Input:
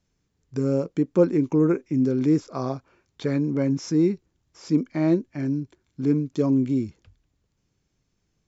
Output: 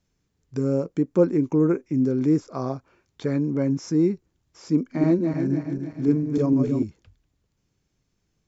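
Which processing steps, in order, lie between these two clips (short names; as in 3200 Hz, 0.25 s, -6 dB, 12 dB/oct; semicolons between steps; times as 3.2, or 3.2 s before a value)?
4.74–6.83 regenerating reverse delay 0.149 s, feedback 66%, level -5 dB; dynamic EQ 3400 Hz, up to -6 dB, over -50 dBFS, Q 0.98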